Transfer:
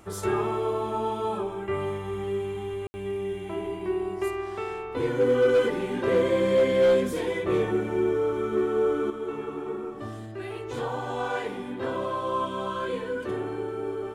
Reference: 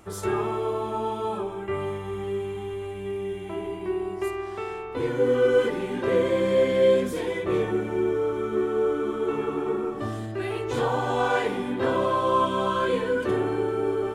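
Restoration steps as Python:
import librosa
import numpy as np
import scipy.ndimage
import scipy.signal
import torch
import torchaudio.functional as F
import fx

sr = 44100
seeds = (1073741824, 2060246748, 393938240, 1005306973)

y = fx.fix_declip(x, sr, threshold_db=-15.0)
y = fx.fix_ambience(y, sr, seeds[0], print_start_s=9.89, print_end_s=10.39, start_s=2.87, end_s=2.94)
y = fx.fix_level(y, sr, at_s=9.1, step_db=6.0)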